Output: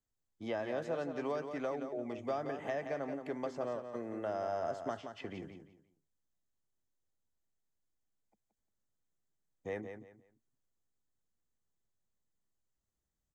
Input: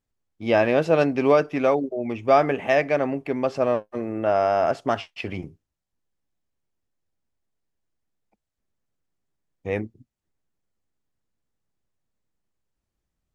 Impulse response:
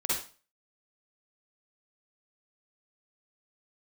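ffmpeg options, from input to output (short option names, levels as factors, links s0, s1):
-filter_complex "[0:a]superequalizer=12b=0.398:15b=2,acrossover=split=160|570|2900[s0][s1][s2][s3];[s0]acompressor=threshold=0.00355:ratio=4[s4];[s1]acompressor=threshold=0.0224:ratio=4[s5];[s2]acompressor=threshold=0.0251:ratio=4[s6];[s3]acompressor=threshold=0.00224:ratio=4[s7];[s4][s5][s6][s7]amix=inputs=4:normalize=0,aecho=1:1:175|350|525:0.398|0.0995|0.0249,volume=0.376"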